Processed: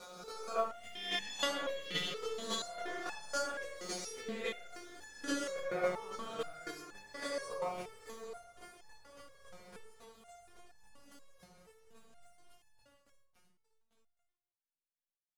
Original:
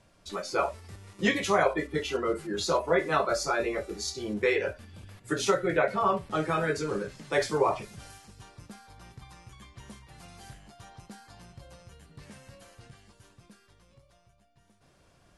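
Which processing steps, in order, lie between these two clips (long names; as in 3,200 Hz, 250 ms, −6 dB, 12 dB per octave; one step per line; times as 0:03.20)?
peak hold with a rise ahead of every peak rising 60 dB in 1.69 s
0:00.71–0:02.20: parametric band 3,400 Hz +11 dB 0.81 octaves
feedback delay with all-pass diffusion 799 ms, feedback 71%, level −14.5 dB
dead-zone distortion −47.5 dBFS
square-wave tremolo 3.6 Hz, depth 60%, duty 15%
noise gate with hold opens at −48 dBFS
high-shelf EQ 4,300 Hz +5.5 dB
convolution reverb RT60 0.80 s, pre-delay 4 ms, DRR 4 dB
step-sequenced resonator 4.2 Hz 180–870 Hz
level +2.5 dB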